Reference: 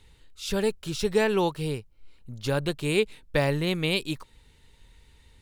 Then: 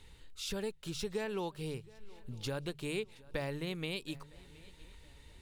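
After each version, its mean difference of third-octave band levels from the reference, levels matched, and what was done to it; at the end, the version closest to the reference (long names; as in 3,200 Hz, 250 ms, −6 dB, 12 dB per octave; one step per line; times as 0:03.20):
3.5 dB: mains-hum notches 50/100/150 Hz
downward compressor 2.5 to 1, threshold −41 dBFS, peak gain reduction 15.5 dB
feedback echo with a long and a short gap by turns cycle 960 ms, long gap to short 3 to 1, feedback 35%, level −22.5 dB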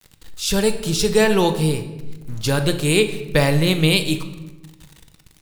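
5.5 dB: bass and treble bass +2 dB, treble +8 dB
centre clipping without the shift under −46.5 dBFS
rectangular room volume 550 cubic metres, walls mixed, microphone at 0.62 metres
level +6 dB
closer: first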